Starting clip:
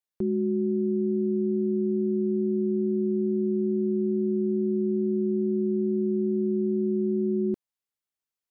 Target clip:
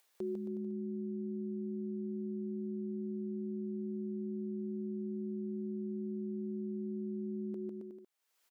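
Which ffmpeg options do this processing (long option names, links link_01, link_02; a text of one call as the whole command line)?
ffmpeg -i in.wav -af "lowshelf=frequency=190:gain=-8.5,acompressor=mode=upward:threshold=-50dB:ratio=2.5,aecho=1:1:150|270|366|442.8|504.2:0.631|0.398|0.251|0.158|0.1,alimiter=limit=-23.5dB:level=0:latency=1:release=251,bass=frequency=250:gain=-13,treble=frequency=4000:gain=-2,volume=-3dB" out.wav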